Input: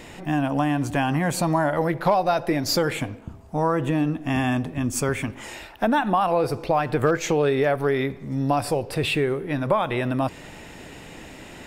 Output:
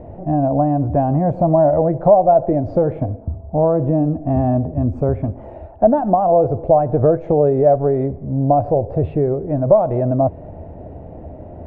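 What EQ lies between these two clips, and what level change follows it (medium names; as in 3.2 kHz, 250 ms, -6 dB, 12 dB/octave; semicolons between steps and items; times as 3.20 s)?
resonant low-pass 650 Hz, resonance Q 4.9; peaking EQ 80 Hz +12.5 dB 0.7 oct; bass shelf 290 Hz +9.5 dB; -2.5 dB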